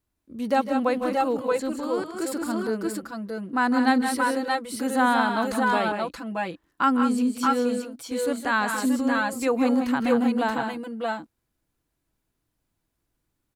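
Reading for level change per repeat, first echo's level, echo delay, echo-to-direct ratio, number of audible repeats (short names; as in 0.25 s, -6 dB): no steady repeat, -19.0 dB, 0.147 s, -0.5 dB, 3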